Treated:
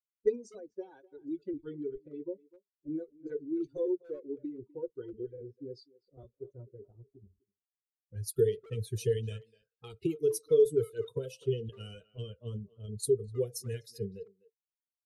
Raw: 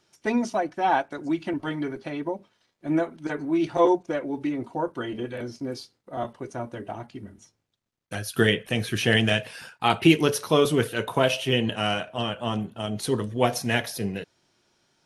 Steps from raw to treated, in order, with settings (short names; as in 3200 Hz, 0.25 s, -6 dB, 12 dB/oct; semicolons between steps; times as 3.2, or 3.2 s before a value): per-bin expansion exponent 2; compressor 5:1, threshold -36 dBFS, peak gain reduction 20.5 dB; low-pass opened by the level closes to 360 Hz, open at -36.5 dBFS; EQ curve 130 Hz 0 dB, 250 Hz -14 dB, 450 Hz +13 dB, 670 Hz -29 dB, 2400 Hz -18 dB, 9200 Hz +1 dB; speakerphone echo 0.25 s, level -20 dB; gain +6 dB